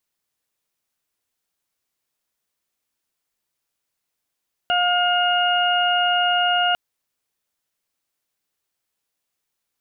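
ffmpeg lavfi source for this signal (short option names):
-f lavfi -i "aevalsrc='0.106*sin(2*PI*712*t)+0.0794*sin(2*PI*1424*t)+0.0119*sin(2*PI*2136*t)+0.0891*sin(2*PI*2848*t)':d=2.05:s=44100"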